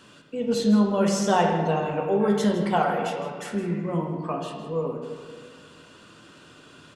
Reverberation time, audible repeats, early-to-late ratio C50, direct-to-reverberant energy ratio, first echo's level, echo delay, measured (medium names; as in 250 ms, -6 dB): 1.8 s, 1, 3.5 dB, 1.5 dB, -12.0 dB, 161 ms